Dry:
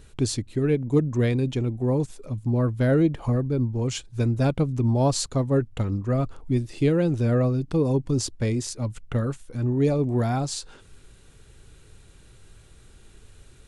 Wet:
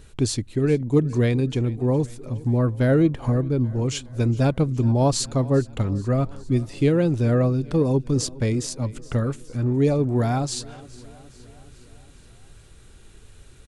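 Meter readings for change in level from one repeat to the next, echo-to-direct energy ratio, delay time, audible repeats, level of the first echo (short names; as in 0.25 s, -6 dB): -4.5 dB, -19.0 dB, 0.415 s, 4, -21.0 dB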